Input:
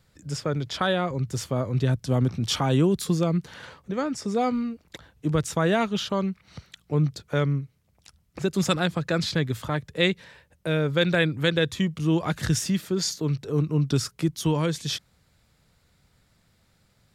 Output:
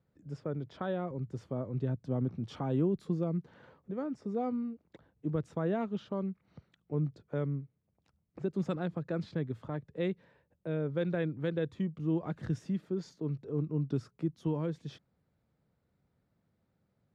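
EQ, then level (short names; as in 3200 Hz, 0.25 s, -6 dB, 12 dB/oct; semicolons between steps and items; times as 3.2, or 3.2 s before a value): band-pass 290 Hz, Q 0.57; -7.5 dB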